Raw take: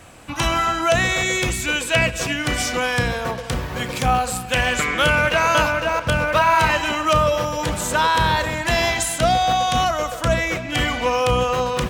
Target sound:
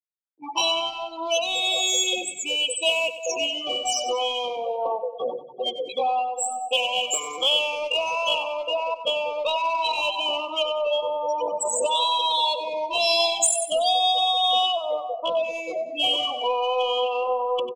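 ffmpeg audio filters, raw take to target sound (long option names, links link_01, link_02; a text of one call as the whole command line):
ffmpeg -i in.wav -filter_complex "[0:a]afftfilt=real='re*gte(hypot(re,im),0.141)':imag='im*gte(hypot(re,im),0.141)':win_size=1024:overlap=0.75,highpass=frequency=470:width=0.5412,highpass=frequency=470:width=1.3066,acrossover=split=2600[link_01][link_02];[link_01]acompressor=threshold=-30dB:ratio=8[link_03];[link_03][link_02]amix=inputs=2:normalize=0,atempo=0.67,asplit=2[link_04][link_05];[link_05]asoftclip=type=tanh:threshold=-25.5dB,volume=-5dB[link_06];[link_04][link_06]amix=inputs=2:normalize=0,asuperstop=centerf=1700:order=8:qfactor=0.98,aecho=1:1:95|190|285|380|475:0.224|0.107|0.0516|0.0248|0.0119,volume=5dB" out.wav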